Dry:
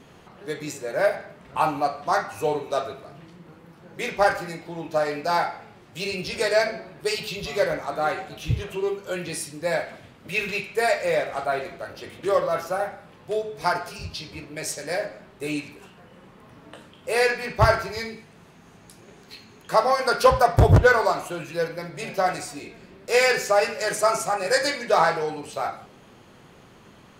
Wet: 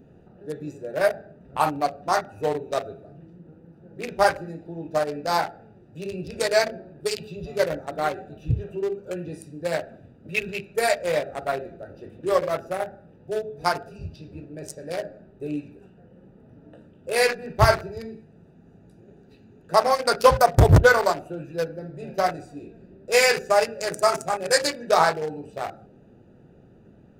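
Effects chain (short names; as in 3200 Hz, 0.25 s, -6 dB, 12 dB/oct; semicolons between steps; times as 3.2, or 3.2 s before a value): Wiener smoothing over 41 samples; high shelf 5000 Hz +9 dB; gain +1 dB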